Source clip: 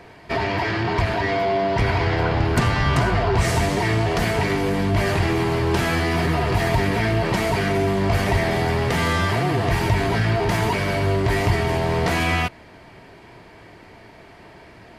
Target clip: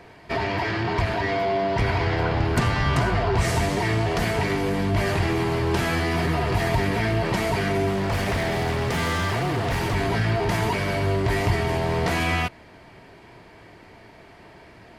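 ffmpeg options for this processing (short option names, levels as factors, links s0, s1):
-filter_complex "[0:a]asettb=1/sr,asplit=3[s0][s1][s2];[s0]atrim=end=7.904[s3];[s1]atrim=start=7.9:end=9.95,asetpts=PTS-STARTPTS,afade=t=in:d=0.004:c=qsin,afade=t=out:st=2.046:d=0.004:c=qsin,aeval=exprs='0.158*(abs(mod(val(0)/0.158+3,4)-2)-1)':c=same[s4];[s2]atrim=start=9.946[s5];[s3][s4]acrossfade=d=0.004:c1=hsin:c2=qsin[s6];[s6][s5]acrossfade=d=0.004:c1=qsin:c2=hsin,volume=0.75"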